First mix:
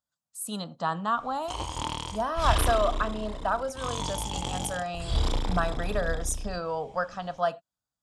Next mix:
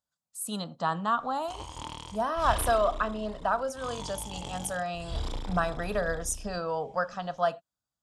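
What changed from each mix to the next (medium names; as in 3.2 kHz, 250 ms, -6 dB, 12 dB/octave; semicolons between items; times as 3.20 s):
background -7.5 dB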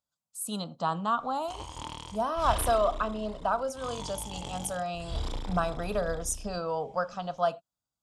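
speech: add peaking EQ 1.8 kHz -12 dB 0.31 oct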